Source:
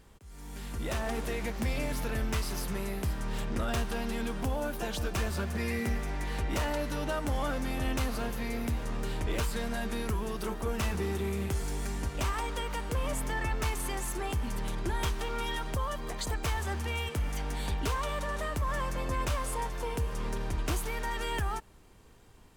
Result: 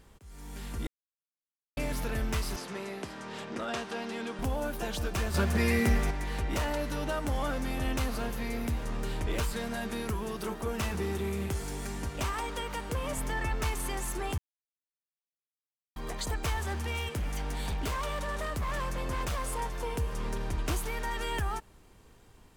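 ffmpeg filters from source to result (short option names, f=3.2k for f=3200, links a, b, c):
-filter_complex "[0:a]asettb=1/sr,asplit=3[a][b][c];[a]atrim=end=2.564[d];[b]atrim=start=2.56:end=4.39,asetpts=PTS-STARTPTS,afade=t=in:d=0.004:c=qsin,afade=t=out:st=1.826:d=0.004:c=qsin,highpass=240,lowpass=6.8k[e];[c]atrim=start=4.386[f];[d][e]acrossfade=d=0.004:c1=hsin:c2=qsin[g];[g][f]acrossfade=d=0.004:c1=qsin:c2=hsin,asettb=1/sr,asplit=3[h][i][j];[h]atrim=end=5.344[k];[i]atrim=start=5.34:end=6.11,asetpts=PTS-STARTPTS,afade=t=in:d=0.004:c=qsin,afade=t=out:st=0.766:d=0.004:c=qsin,acontrast=50[l];[j]atrim=start=6.106[m];[k][l]acrossfade=d=0.004:c1=hsin:c2=qsin[n];[n][m]acrossfade=d=0.004:c1=qsin:c2=hsin,asettb=1/sr,asplit=3[o][p][q];[o]atrim=end=9.534[r];[p]atrim=start=9.53:end=13.18,asetpts=PTS-STARTPTS,afade=t=in:d=0.004:c=qsin,afade=t=out:st=3.646:d=0.004:c=qsin,highpass=59[s];[q]atrim=start=13.176[t];[r][s]acrossfade=d=0.004:c1=hsin:c2=qsin[u];[u][t]acrossfade=d=0.004:c1=qsin:c2=hsin,asettb=1/sr,asplit=3[v][w][x];[v]atrim=end=16.604[y];[w]atrim=start=16.6:end=19.6,asetpts=PTS-STARTPTS,afade=t=in:d=0.004:c=qsin,afade=t=out:st=2.996:d=0.004:c=qsin,aeval=exprs='0.0447*(abs(mod(val(0)/0.0447+3,4)-2)-1)':c=same[z];[x]atrim=start=19.596[aa];[y][z]acrossfade=d=0.004:c1=hsin:c2=qsin[ab];[ab][aa]acrossfade=d=0.004:c1=qsin:c2=hsin,asplit=5[ac][ad][ae][af][ag];[ac]atrim=end=0.87,asetpts=PTS-STARTPTS,afade=t=out:st=0.866:d=0.004:c=hsin[ah];[ad]atrim=start=0.87:end=1.77,asetpts=PTS-STARTPTS,volume=0[ai];[ae]atrim=start=1.77:end=14.38,asetpts=PTS-STARTPTS,afade=t=in:d=0.004:c=hsin,afade=t=out:st=12.606:d=0.004:c=hsin[aj];[af]atrim=start=14.38:end=15.96,asetpts=PTS-STARTPTS,volume=0[ak];[ag]atrim=start=15.96,asetpts=PTS-STARTPTS,afade=t=in:d=0.004:c=hsin[al];[ah][ai][aj][ak][al]concat=n=5:v=0:a=1"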